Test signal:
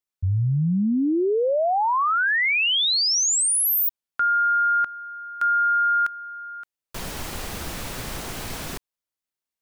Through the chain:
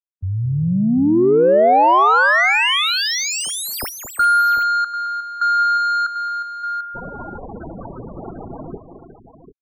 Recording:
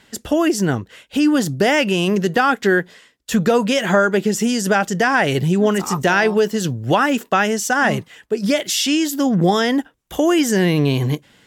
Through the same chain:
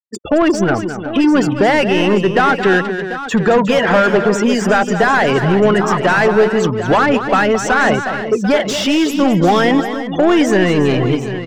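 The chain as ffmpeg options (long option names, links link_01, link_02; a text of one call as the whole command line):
ffmpeg -i in.wav -filter_complex "[0:a]afftfilt=real='re*gte(hypot(re,im),0.0562)':imag='im*gte(hypot(re,im),0.0562)':win_size=1024:overlap=0.75,asplit=2[link_01][link_02];[link_02]highpass=frequency=720:poles=1,volume=21dB,asoftclip=type=tanh:threshold=-3dB[link_03];[link_01][link_03]amix=inputs=2:normalize=0,lowpass=frequency=1200:poles=1,volume=-6dB,aecho=1:1:218|360|743:0.316|0.237|0.251" out.wav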